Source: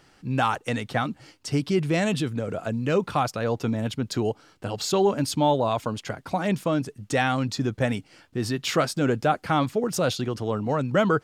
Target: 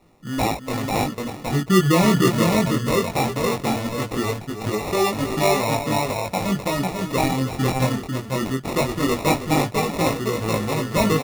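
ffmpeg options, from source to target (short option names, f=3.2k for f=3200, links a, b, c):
-filter_complex "[0:a]asettb=1/sr,asplit=3[a][b][c];[a]atrim=end=1.654[d];[b]atrim=start=1.65:end=2.6,asetpts=PTS-STARTPTS,afade=t=in:d=0.004:c=qsin,afade=t=out:st=0.946:d=0.004:c=qsin,tiltshelf=f=1.4k:g=7[e];[c]atrim=start=2.596[f];[d][e]acrossfade=d=0.004:c1=hsin:c2=qsin[g];[g][f]acrossfade=d=0.004:c1=qsin:c2=hsin,aecho=1:1:319|497:0.282|0.668,acrusher=samples=28:mix=1:aa=0.000001,flanger=delay=18.5:depth=4.5:speed=0.19,volume=4dB"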